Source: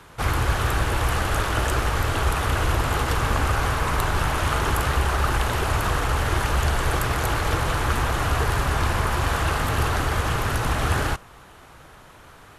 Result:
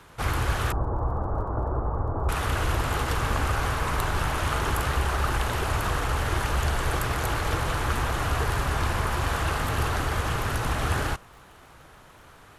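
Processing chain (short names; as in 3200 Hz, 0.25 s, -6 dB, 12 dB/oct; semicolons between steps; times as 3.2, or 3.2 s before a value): 0.72–2.29 steep low-pass 1100 Hz 36 dB/oct; crackle 32/s -43 dBFS; gain -3.5 dB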